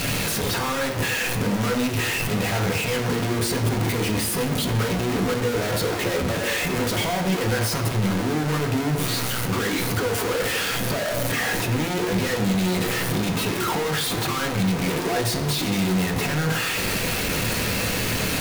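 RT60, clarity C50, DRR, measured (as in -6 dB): 0.85 s, 9.0 dB, 1.5 dB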